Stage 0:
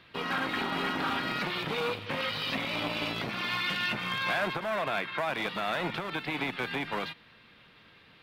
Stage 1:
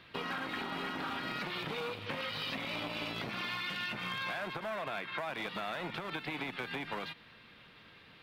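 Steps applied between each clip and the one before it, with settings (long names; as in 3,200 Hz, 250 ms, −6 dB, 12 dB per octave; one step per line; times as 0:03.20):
downward compressor, threshold −35 dBFS, peak gain reduction 9.5 dB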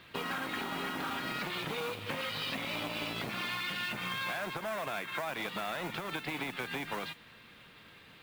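noise that follows the level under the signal 17 dB
level +1.5 dB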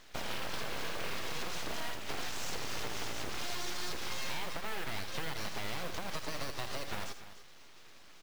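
full-wave rectification
on a send: multi-tap delay 81/292 ms −9.5/−14 dB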